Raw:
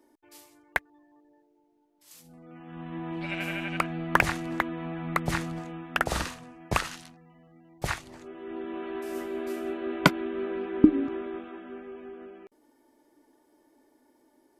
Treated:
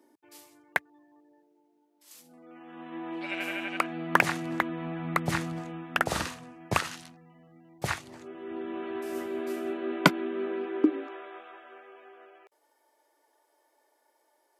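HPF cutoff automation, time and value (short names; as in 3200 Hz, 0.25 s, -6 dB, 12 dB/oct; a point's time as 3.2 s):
HPF 24 dB/oct
0.77 s 100 Hz
2.52 s 260 Hz
3.77 s 260 Hz
4.7 s 80 Hz
9.26 s 80 Hz
10.49 s 200 Hz
11.18 s 530 Hz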